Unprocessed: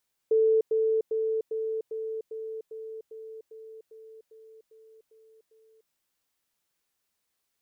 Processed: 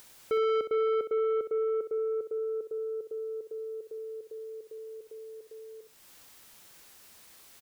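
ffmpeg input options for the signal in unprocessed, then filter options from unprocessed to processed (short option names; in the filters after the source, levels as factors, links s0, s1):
-f lavfi -i "aevalsrc='pow(10,(-18.5-3*floor(t/0.4))/20)*sin(2*PI*442*t)*clip(min(mod(t,0.4),0.3-mod(t,0.4))/0.005,0,1)':d=5.6:s=44100"
-filter_complex "[0:a]asplit=2[s0][s1];[s1]acompressor=mode=upward:threshold=0.02:ratio=2.5,volume=0.891[s2];[s0][s2]amix=inputs=2:normalize=0,asoftclip=type=tanh:threshold=0.0562,aecho=1:1:64|128:0.335|0.0536"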